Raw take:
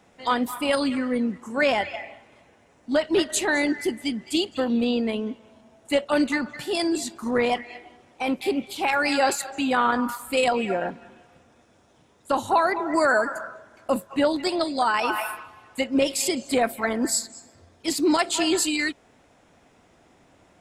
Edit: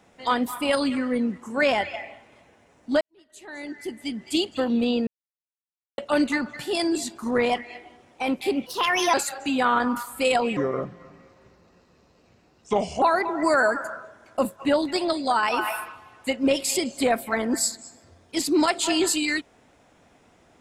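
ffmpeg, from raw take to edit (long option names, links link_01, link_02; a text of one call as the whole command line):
ffmpeg -i in.wav -filter_complex "[0:a]asplit=8[link_01][link_02][link_03][link_04][link_05][link_06][link_07][link_08];[link_01]atrim=end=3.01,asetpts=PTS-STARTPTS,afade=type=out:start_time=3.006:duration=0.004:curve=hsin[link_09];[link_02]atrim=start=3.01:end=5.07,asetpts=PTS-STARTPTS,afade=type=in:duration=1.33:curve=qua,afade=type=out:start_time=2.056:duration=0.004:curve=hsin[link_10];[link_03]atrim=start=5.07:end=5.98,asetpts=PTS-STARTPTS,volume=0[link_11];[link_04]atrim=start=5.98:end=8.664,asetpts=PTS-STARTPTS,afade=type=in:duration=0.004:curve=hsin[link_12];[link_05]atrim=start=8.66:end=9.26,asetpts=PTS-STARTPTS,asetrate=55566,aresample=44100[link_13];[link_06]atrim=start=9.256:end=10.694[link_14];[link_07]atrim=start=10.69:end=12.53,asetpts=PTS-STARTPTS,asetrate=33075,aresample=44100[link_15];[link_08]atrim=start=12.526[link_16];[link_09][link_10][link_11][link_12]concat=n=4:v=0:a=1[link_17];[link_17][link_13]acrossfade=duration=0.004:curve1=hsin:curve2=hsin[link_18];[link_18][link_14]acrossfade=duration=0.004:curve1=hsin:curve2=hsin[link_19];[link_19][link_15]acrossfade=duration=0.004:curve1=hsin:curve2=hsin[link_20];[link_20][link_16]acrossfade=duration=0.004:curve1=hsin:curve2=hsin" out.wav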